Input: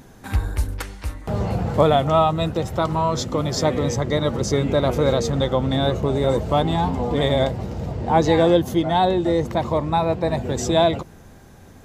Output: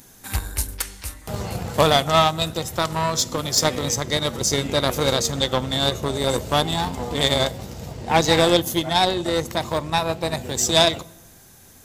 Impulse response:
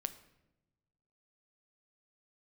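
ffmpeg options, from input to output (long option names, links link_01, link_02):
-filter_complex "[0:a]asplit=2[link_01][link_02];[1:a]atrim=start_sample=2205,asetrate=38367,aresample=44100[link_03];[link_02][link_03]afir=irnorm=-1:irlink=0,volume=0.5dB[link_04];[link_01][link_04]amix=inputs=2:normalize=0,aeval=exprs='1.5*(cos(1*acos(clip(val(0)/1.5,-1,1)))-cos(1*PI/2))+0.106*(cos(7*acos(clip(val(0)/1.5,-1,1)))-cos(7*PI/2))':channel_layout=same,crystalizer=i=6.5:c=0,volume=-8dB"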